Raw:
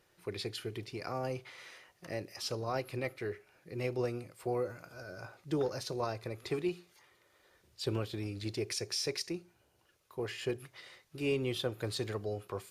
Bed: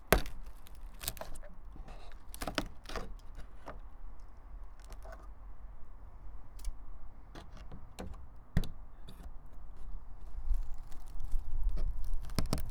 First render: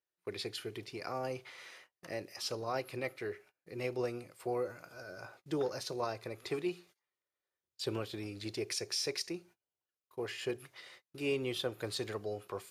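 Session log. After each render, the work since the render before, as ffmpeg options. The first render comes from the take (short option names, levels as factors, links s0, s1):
-af "agate=range=0.0447:threshold=0.00158:ratio=16:detection=peak,lowshelf=f=160:g=-10"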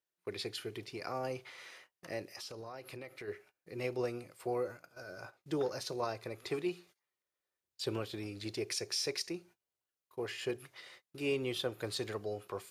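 -filter_complex "[0:a]asplit=3[s0][s1][s2];[s0]afade=t=out:st=2.27:d=0.02[s3];[s1]acompressor=threshold=0.00794:ratio=8:attack=3.2:release=140:knee=1:detection=peak,afade=t=in:st=2.27:d=0.02,afade=t=out:st=3.27:d=0.02[s4];[s2]afade=t=in:st=3.27:d=0.02[s5];[s3][s4][s5]amix=inputs=3:normalize=0,asplit=3[s6][s7][s8];[s6]afade=t=out:st=4.59:d=0.02[s9];[s7]agate=range=0.282:threshold=0.00251:ratio=16:release=100:detection=peak,afade=t=in:st=4.59:d=0.02,afade=t=out:st=5.4:d=0.02[s10];[s8]afade=t=in:st=5.4:d=0.02[s11];[s9][s10][s11]amix=inputs=3:normalize=0"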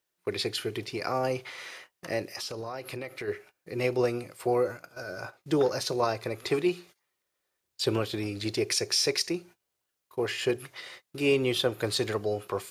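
-af "volume=2.99"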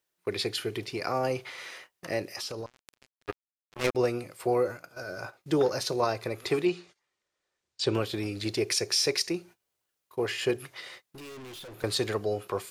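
-filter_complex "[0:a]asettb=1/sr,asplit=3[s0][s1][s2];[s0]atrim=end=2.664[s3];[s1]atrim=start=2.66:end=3.95,asetpts=PTS-STARTPTS,afade=t=in:d=0.004:c=qsin,afade=t=out:st=1.286:d=0.004:c=qsin,acrusher=bits=3:mix=0:aa=0.5[s4];[s2]atrim=start=3.946[s5];[s3][s4]acrossfade=d=0.004:c1=hsin:c2=qsin[s6];[s6][s5]acrossfade=d=0.004:c1=qsin:c2=hsin,asettb=1/sr,asplit=3[s7][s8][s9];[s7]atrim=end=6.654[s10];[s8]atrim=start=6.65:end=7.95,asetpts=PTS-STARTPTS,afade=t=in:d=0.004:c=qsin,afade=t=out:st=1.296:d=0.004:c=qsin,lowpass=f=7900:w=0.5412,lowpass=f=7900:w=1.3066[s11];[s9]atrim=start=7.946[s12];[s10][s11]acrossfade=d=0.004:c1=hsin:c2=qsin[s13];[s13][s12]acrossfade=d=0.004:c1=qsin:c2=hsin,asettb=1/sr,asplit=3[s14][s15][s16];[s14]atrim=end=11.064[s17];[s15]atrim=start=11.06:end=11.84,asetpts=PTS-STARTPTS,afade=t=in:d=0.004:c=qsin,afade=t=out:st=0.776:d=0.004:c=qsin,aeval=exprs='(tanh(141*val(0)+0.1)-tanh(0.1))/141':c=same[s18];[s16]atrim=start=11.836[s19];[s17][s18]acrossfade=d=0.004:c1=hsin:c2=qsin[s20];[s20][s19]acrossfade=d=0.004:c1=qsin:c2=hsin"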